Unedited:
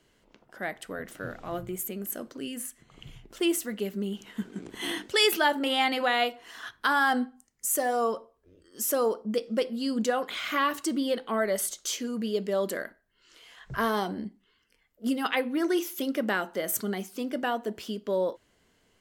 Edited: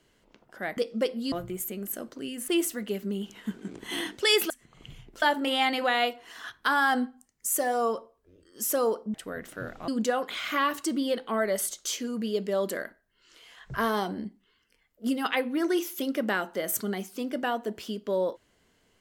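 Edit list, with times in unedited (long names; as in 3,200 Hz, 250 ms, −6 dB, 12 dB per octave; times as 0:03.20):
0:00.77–0:01.51: swap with 0:09.33–0:09.88
0:02.67–0:03.39: move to 0:05.41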